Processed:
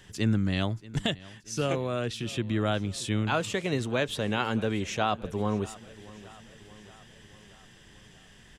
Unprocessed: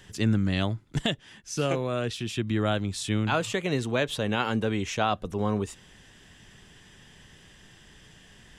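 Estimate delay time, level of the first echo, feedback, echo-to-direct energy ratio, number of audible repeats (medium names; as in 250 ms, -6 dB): 630 ms, -20.0 dB, 58%, -18.0 dB, 4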